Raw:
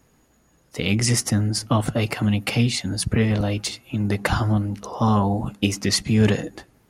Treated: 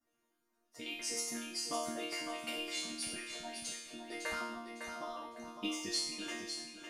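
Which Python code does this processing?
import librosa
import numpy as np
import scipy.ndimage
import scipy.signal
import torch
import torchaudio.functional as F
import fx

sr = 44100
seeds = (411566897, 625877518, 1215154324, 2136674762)

y = fx.hpss_only(x, sr, part='percussive')
y = fx.low_shelf(y, sr, hz=99.0, db=-11.0)
y = fx.resonator_bank(y, sr, root=58, chord='sus4', decay_s=0.81)
y = fx.echo_feedback(y, sr, ms=555, feedback_pct=26, wet_db=-7.0)
y = F.gain(torch.from_numpy(y), 9.0).numpy()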